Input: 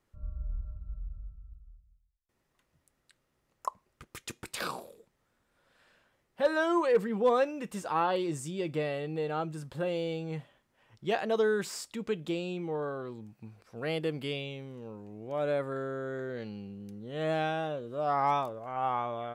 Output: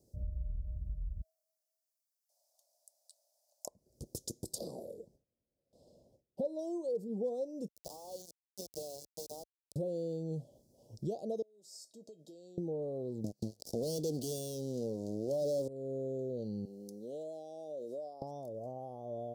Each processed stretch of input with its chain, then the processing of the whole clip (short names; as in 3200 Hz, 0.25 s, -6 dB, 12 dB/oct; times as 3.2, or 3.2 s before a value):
1.21–3.67 steep high-pass 570 Hz 72 dB/oct + frequency shift +37 Hz
4.58–6.59 gate with hold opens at -59 dBFS, closes at -62 dBFS + high shelf 3500 Hz -11 dB
7.68–9.76 median filter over 5 samples + HPF 860 Hz + sample gate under -38 dBFS
11.42–12.58 weighting filter A + compressor 12:1, threshold -43 dBFS + resonator 640 Hz, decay 0.18 s, mix 80%
13.24–15.68 weighting filter D + sample leveller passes 5
16.65–18.22 low shelf 420 Hz -8.5 dB + compressor 12:1, threshold -45 dBFS + HPF 300 Hz
whole clip: HPF 48 Hz; compressor 5:1, threshold -45 dBFS; elliptic band-stop 610–5000 Hz, stop band 60 dB; gain +9.5 dB